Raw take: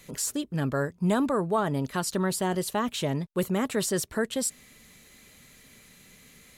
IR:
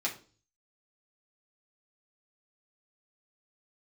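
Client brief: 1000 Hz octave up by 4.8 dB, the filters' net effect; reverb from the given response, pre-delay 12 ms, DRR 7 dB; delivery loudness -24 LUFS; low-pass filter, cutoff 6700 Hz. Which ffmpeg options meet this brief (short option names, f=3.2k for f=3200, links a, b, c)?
-filter_complex "[0:a]lowpass=6.7k,equalizer=f=1k:t=o:g=6,asplit=2[a][b];[1:a]atrim=start_sample=2205,adelay=12[c];[b][c]afir=irnorm=-1:irlink=0,volume=-12.5dB[d];[a][d]amix=inputs=2:normalize=0,volume=2.5dB"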